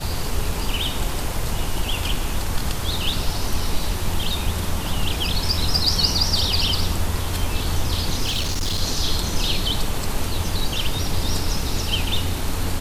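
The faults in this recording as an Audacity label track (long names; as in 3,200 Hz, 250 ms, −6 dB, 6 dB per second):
8.250000	8.810000	clipping −19 dBFS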